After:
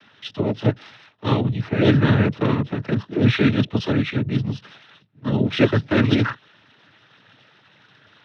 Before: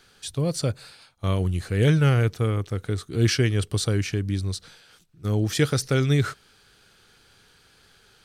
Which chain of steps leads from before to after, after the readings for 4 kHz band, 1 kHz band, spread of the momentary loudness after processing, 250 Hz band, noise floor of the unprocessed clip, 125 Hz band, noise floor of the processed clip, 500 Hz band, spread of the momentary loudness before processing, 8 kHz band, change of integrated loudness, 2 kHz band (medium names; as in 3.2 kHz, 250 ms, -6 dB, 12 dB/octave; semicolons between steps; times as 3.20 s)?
+1.5 dB, +6.0 dB, 12 LU, +7.5 dB, -58 dBFS, +1.0 dB, -57 dBFS, +4.0 dB, 10 LU, under -15 dB, +3.5 dB, +5.0 dB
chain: monotone LPC vocoder at 8 kHz 140 Hz; noise-vocoded speech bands 12; trim +6 dB